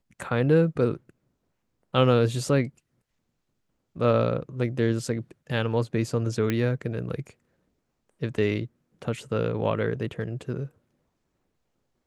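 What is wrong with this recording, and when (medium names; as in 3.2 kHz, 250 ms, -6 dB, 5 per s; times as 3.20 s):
6.50 s: pop -13 dBFS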